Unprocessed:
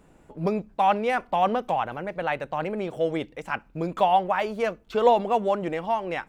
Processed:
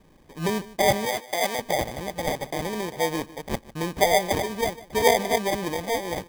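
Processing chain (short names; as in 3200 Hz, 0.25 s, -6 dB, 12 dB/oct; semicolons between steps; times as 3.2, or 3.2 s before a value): sample-and-hold 32×; 1.05–1.59 HPF 730 Hz 6 dB/oct; echo 0.151 s -18.5 dB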